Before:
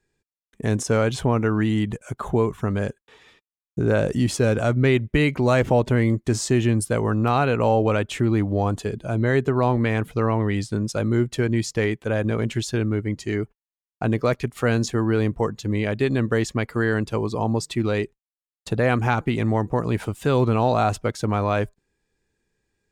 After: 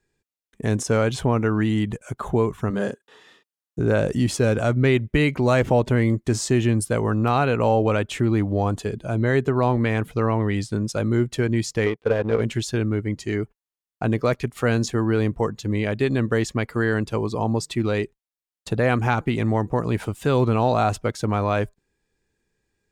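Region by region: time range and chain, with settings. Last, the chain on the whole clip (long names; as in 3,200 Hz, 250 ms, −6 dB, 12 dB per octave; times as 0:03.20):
0:02.70–0:03.79: high-pass filter 180 Hz + notch filter 2,300 Hz, Q 6.1 + double-tracking delay 35 ms −3 dB
0:11.86–0:12.41: Savitzky-Golay smoothing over 15 samples + parametric band 460 Hz +13 dB 0.3 octaves + power curve on the samples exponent 1.4
whole clip: no processing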